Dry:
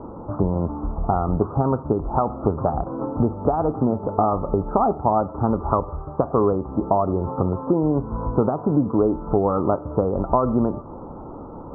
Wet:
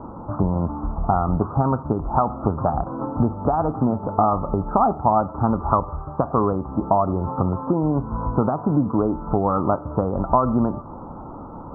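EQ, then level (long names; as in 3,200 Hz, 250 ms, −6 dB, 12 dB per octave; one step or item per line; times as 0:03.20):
low-shelf EQ 150 Hz −4.5 dB
parametric band 430 Hz −8.5 dB 1.1 octaves
+4.5 dB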